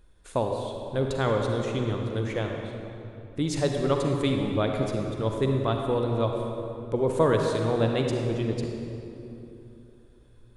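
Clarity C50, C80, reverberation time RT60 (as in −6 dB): 2.5 dB, 3.5 dB, 3.0 s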